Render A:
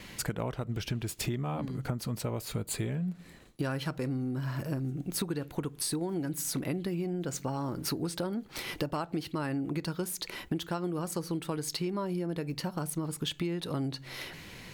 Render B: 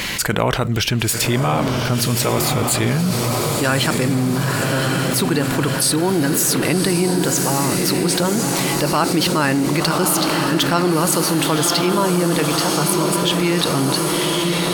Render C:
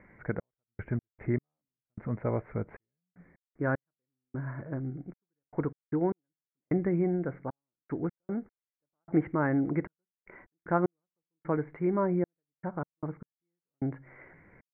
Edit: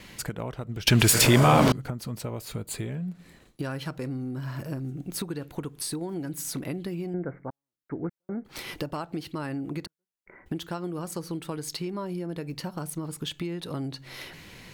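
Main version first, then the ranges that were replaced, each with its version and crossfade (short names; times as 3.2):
A
0.87–1.72 from B
7.14–8.45 from C
9.86–10.46 from C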